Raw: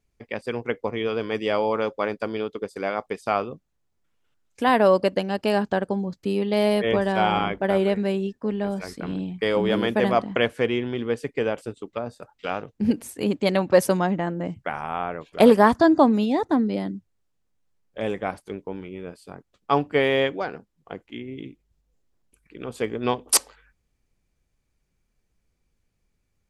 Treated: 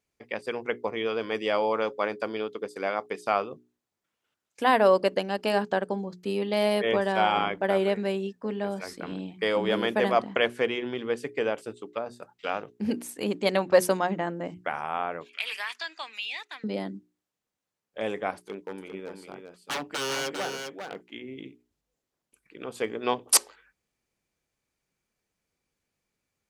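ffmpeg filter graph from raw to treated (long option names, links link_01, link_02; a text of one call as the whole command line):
ffmpeg -i in.wav -filter_complex "[0:a]asettb=1/sr,asplit=3[link_01][link_02][link_03];[link_01]atrim=end=15.294[link_04];[link_02]atrim=start=15.29:end=16.64,asetpts=PTS-STARTPTS,afade=type=in:duration=0.004:curve=qsin,afade=type=out:start_time=1.346:duration=0.004:curve=qsin,highpass=frequency=2500:width_type=q:width=4.5,highshelf=frequency=11000:gain=-8,acompressor=threshold=-28dB:ratio=3:attack=3.2:release=140:knee=1:detection=peak[link_05];[link_03]atrim=start=16.636[link_06];[link_04][link_05]acrossfade=duration=0.004:curve1=hsin:curve2=qsin[link_07];[link_07][link_06]acrossfade=duration=0.004:curve1=qsin:curve2=hsin,asettb=1/sr,asplit=3[link_08][link_09][link_10];[link_08]atrim=end=18.384[link_11];[link_09]atrim=start=18.38:end=21.01,asetpts=PTS-STARTPTS,afade=type=in:duration=0.004:curve=qsin,afade=type=out:start_time=2.626:duration=0.004:curve=qsin,equalizer=frequency=100:width_type=o:width=0.25:gain=-10.5,aeval=exprs='0.0668*(abs(mod(val(0)/0.0668+3,4)-2)-1)':channel_layout=same,aecho=1:1:400:0.501,atrim=end_sample=115983[link_12];[link_10]atrim=start=21.006[link_13];[link_11][link_12]acrossfade=duration=0.004:curve1=hsin:curve2=qsin[link_14];[link_14][link_13]acrossfade=duration=0.004:curve1=qsin:curve2=hsin,highpass=frequency=320:poles=1,bandreject=frequency=60:width_type=h:width=6,bandreject=frequency=120:width_type=h:width=6,bandreject=frequency=180:width_type=h:width=6,bandreject=frequency=240:width_type=h:width=6,bandreject=frequency=300:width_type=h:width=6,bandreject=frequency=360:width_type=h:width=6,bandreject=frequency=420:width_type=h:width=6,volume=-1dB" out.wav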